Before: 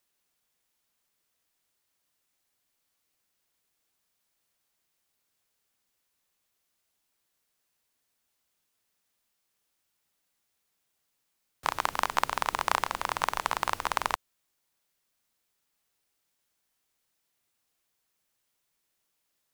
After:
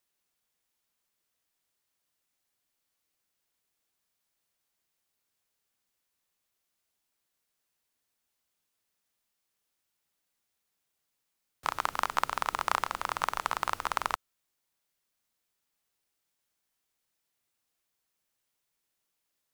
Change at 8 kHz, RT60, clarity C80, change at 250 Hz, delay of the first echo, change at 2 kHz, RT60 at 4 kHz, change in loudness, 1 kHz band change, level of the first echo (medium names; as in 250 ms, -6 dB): -3.5 dB, no reverb, no reverb, -3.5 dB, no echo, -2.5 dB, no reverb, -2.0 dB, -1.5 dB, no echo